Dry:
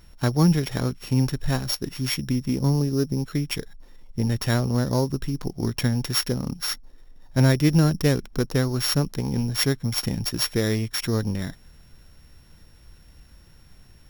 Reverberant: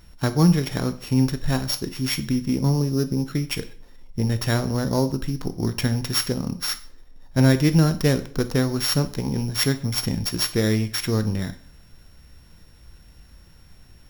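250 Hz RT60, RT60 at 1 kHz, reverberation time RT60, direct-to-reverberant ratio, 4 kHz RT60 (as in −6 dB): 0.55 s, 0.50 s, 0.50 s, 10.0 dB, 0.45 s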